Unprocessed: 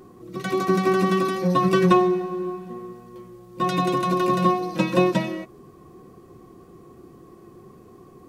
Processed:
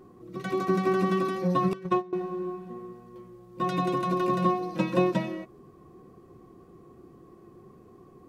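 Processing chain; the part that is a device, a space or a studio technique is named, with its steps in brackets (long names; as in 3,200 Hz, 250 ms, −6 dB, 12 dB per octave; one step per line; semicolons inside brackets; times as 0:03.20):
behind a face mask (high-shelf EQ 2,900 Hz −6.5 dB)
0:01.73–0:02.13: noise gate −14 dBFS, range −20 dB
level −4.5 dB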